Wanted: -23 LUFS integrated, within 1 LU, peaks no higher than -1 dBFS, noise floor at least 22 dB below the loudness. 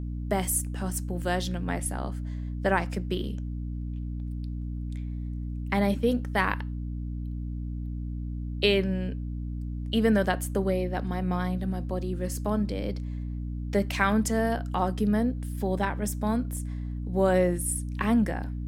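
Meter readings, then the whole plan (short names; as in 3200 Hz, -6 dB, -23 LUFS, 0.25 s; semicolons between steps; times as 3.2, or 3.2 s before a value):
hum 60 Hz; harmonics up to 300 Hz; hum level -30 dBFS; loudness -29.0 LUFS; peak -8.0 dBFS; loudness target -23.0 LUFS
-> notches 60/120/180/240/300 Hz; gain +6 dB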